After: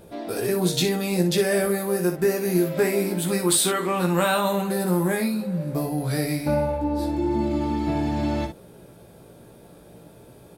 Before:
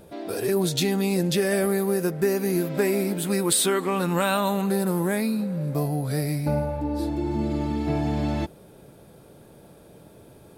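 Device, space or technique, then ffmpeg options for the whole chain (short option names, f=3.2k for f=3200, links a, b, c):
slapback doubling: -filter_complex "[0:a]asettb=1/sr,asplit=3[a][b][c];[a]atrim=end=5.984[d];[b]atrim=start=5.98:end=6.75,asetpts=PTS-STARTPTS,afade=t=in:d=0.004:c=qsin,afade=t=out:st=0.766:d=0.004:c=qsin,equalizer=f=2.6k:w=0.49:g=4[e];[c]atrim=start=6.746[f];[d][e]acrossfade=d=0.004:c1=hsin:c2=qsin[g];[g][f]acrossfade=d=0.004:c1=qsin:c2=hsin,asplit=3[h][i][j];[i]adelay=17,volume=-5dB[k];[j]adelay=60,volume=-8dB[l];[h][k][l]amix=inputs=3:normalize=0"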